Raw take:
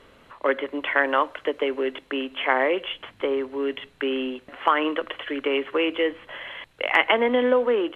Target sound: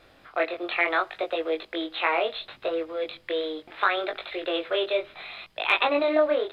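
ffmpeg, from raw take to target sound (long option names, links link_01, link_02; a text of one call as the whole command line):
ffmpeg -i in.wav -af "asetrate=53802,aresample=44100,flanger=delay=18.5:depth=4.8:speed=0.71" out.wav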